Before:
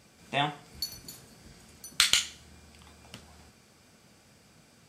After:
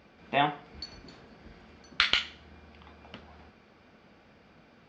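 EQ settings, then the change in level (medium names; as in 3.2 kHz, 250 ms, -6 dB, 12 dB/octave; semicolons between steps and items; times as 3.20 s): Gaussian low-pass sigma 2.5 samples; peaking EQ 120 Hz -8.5 dB 0.98 oct; +4.5 dB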